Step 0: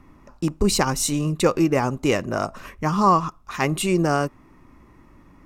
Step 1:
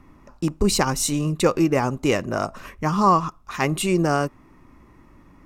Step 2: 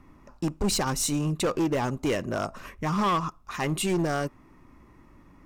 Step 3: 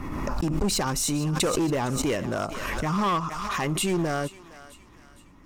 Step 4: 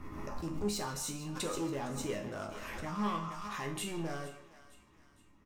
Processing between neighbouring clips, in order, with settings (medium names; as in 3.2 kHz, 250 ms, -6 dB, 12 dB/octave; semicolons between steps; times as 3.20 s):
no audible change
in parallel at -2.5 dB: peak limiter -11.5 dBFS, peak gain reduction 7.5 dB; on the sum: hard clipper -13 dBFS, distortion -11 dB; trim -8 dB
thinning echo 461 ms, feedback 48%, high-pass 1.1 kHz, level -14.5 dB; swell ahead of each attack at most 23 dB/s
chord resonator C#2 minor, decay 0.37 s; speakerphone echo 160 ms, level -12 dB